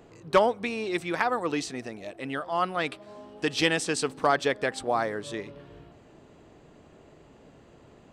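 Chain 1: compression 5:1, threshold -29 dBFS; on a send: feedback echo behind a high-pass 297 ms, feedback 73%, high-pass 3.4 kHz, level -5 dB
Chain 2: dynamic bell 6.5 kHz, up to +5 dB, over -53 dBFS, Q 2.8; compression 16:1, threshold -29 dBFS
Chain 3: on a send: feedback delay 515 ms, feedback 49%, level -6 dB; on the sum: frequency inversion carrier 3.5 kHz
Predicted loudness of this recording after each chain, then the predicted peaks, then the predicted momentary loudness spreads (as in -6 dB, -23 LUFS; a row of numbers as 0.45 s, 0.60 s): -34.0 LUFS, -35.0 LUFS, -25.0 LUFS; -15.0 dBFS, -16.0 dBFS, -6.5 dBFS; 20 LU, 21 LU, 18 LU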